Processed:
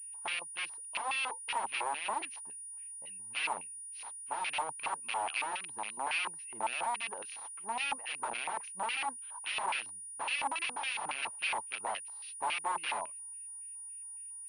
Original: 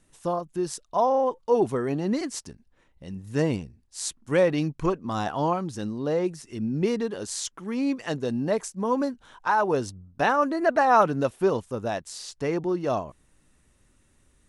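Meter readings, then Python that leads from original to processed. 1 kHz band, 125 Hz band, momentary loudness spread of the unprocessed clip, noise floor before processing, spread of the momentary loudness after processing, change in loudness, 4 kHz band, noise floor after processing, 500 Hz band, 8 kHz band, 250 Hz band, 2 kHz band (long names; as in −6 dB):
−8.5 dB, below −30 dB, 10 LU, −64 dBFS, 9 LU, −10.0 dB, +1.0 dB, −46 dBFS, −22.5 dB, +0.5 dB, −29.5 dB, −2.0 dB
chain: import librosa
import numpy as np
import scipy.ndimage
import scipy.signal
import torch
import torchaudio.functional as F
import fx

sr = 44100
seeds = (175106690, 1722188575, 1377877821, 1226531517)

y = (np.mod(10.0 ** (24.0 / 20.0) * x + 1.0, 2.0) - 1.0) / 10.0 ** (24.0 / 20.0)
y = fx.filter_lfo_bandpass(y, sr, shape='square', hz=3.6, low_hz=890.0, high_hz=2600.0, q=6.4)
y = fx.pwm(y, sr, carrier_hz=9600.0)
y = y * librosa.db_to_amplitude(6.0)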